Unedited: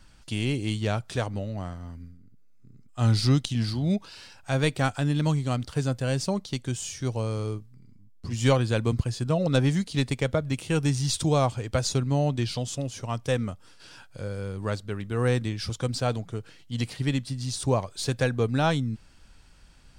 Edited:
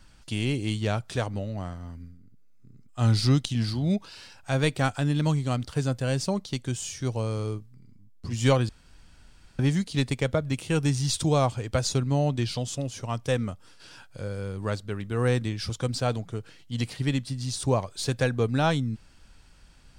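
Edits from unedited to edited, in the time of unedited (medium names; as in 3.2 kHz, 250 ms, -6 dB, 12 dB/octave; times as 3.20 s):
8.69–9.59 s: room tone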